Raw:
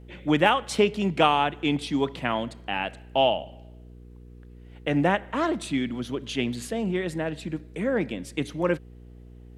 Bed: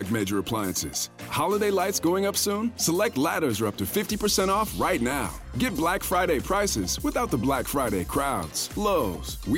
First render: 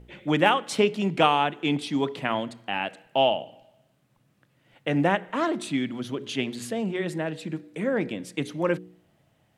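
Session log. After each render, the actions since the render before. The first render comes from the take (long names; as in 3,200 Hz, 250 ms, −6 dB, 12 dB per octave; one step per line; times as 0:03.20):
hum removal 60 Hz, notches 8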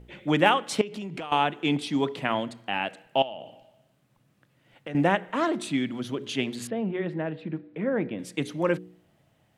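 0:00.81–0:01.32: downward compressor 16 to 1, threshold −31 dBFS
0:03.22–0:04.95: downward compressor 5 to 1, threshold −34 dBFS
0:06.67–0:08.19: high-frequency loss of the air 400 metres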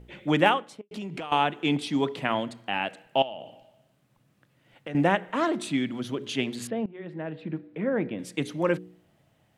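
0:00.42–0:00.91: fade out and dull
0:06.86–0:07.50: fade in, from −20 dB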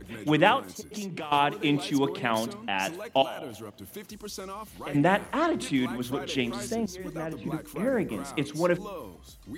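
mix in bed −15.5 dB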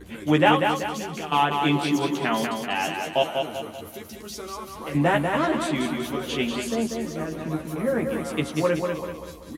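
double-tracking delay 13 ms −2.5 dB
repeating echo 192 ms, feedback 45%, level −5 dB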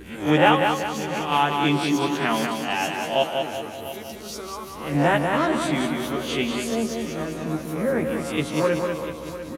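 peak hold with a rise ahead of every peak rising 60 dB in 0.38 s
single-tap delay 696 ms −14 dB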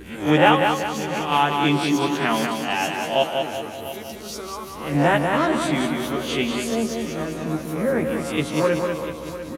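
level +1.5 dB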